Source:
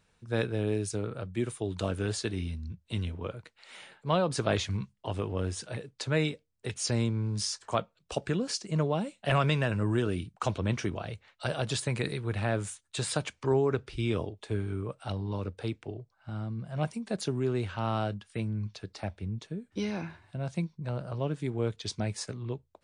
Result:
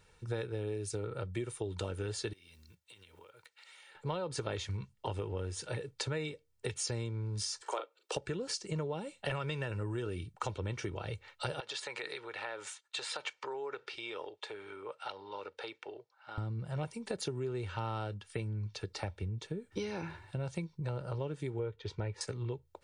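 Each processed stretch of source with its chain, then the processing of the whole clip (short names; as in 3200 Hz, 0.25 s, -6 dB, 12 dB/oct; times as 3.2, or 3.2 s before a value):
2.33–3.95 block floating point 7-bit + HPF 1300 Hz 6 dB/oct + compressor 10:1, threshold -58 dBFS
7.62–8.16 steep high-pass 310 Hz 48 dB/oct + doubler 40 ms -7 dB
11.6–16.38 compressor 4:1, threshold -34 dBFS + BPF 660–5100 Hz
21.59–22.21 LPF 2500 Hz + comb 2.1 ms, depth 31%
whole clip: comb 2.2 ms, depth 53%; compressor 6:1, threshold -38 dBFS; gain +3.5 dB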